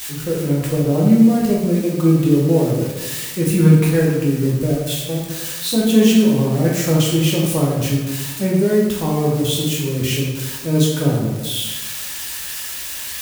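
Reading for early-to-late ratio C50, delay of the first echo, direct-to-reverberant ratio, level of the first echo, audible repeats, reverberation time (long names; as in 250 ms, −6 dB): 1.0 dB, no echo audible, −4.5 dB, no echo audible, no echo audible, 1.2 s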